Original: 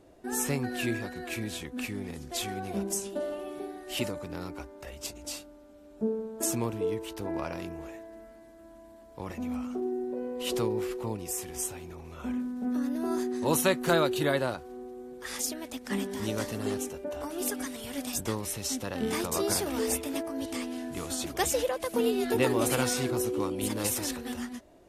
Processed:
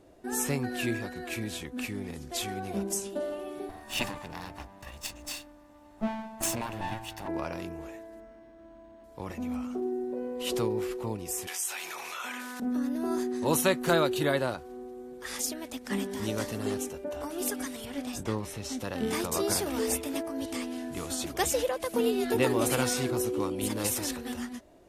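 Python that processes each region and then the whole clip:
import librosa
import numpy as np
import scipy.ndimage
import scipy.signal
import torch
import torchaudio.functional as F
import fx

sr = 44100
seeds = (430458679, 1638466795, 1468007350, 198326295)

y = fx.chain(x, sr, fx.lower_of_two(delay_ms=1.1),
    fx.dynamic_eq(hz=2700.0, q=0.8, threshold_db=-49.0, ratio=4.0, max_db=5), at=(3.69, 7.28))
y = fx.chain(y, sr, fx.lowpass(hz=10000.0, slope=12),
    fx.resample_linear(factor=6), at=(8.2, 9.04))
y = fx.chain(y, sr, fx.highpass(hz=1400.0, slope=12),
    fx.env_flatten(amount_pct=70), at=(11.47, 12.6))
y = fx.chain(y, sr, fx.lowpass(hz=2900.0, slope=6),
    fx.doubler(ms=28.0, db=-12.5), at=(17.85, 18.79))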